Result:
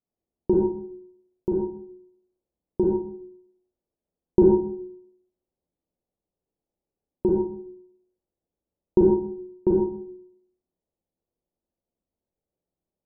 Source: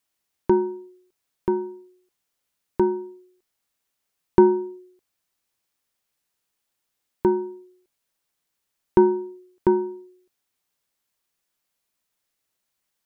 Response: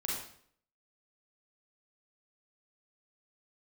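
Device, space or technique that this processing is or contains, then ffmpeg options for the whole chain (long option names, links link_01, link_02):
next room: -filter_complex "[0:a]lowpass=frequency=660:width=0.5412,lowpass=frequency=660:width=1.3066[link_01];[1:a]atrim=start_sample=2205[link_02];[link_01][link_02]afir=irnorm=-1:irlink=0"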